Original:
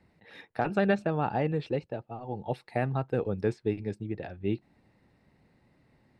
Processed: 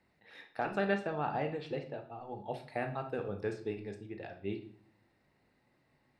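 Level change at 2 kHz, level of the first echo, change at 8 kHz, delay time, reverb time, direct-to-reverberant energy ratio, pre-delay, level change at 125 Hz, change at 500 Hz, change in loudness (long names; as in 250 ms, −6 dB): −3.0 dB, no echo audible, can't be measured, no echo audible, 0.55 s, 5.0 dB, 3 ms, −11.0 dB, −6.0 dB, −6.5 dB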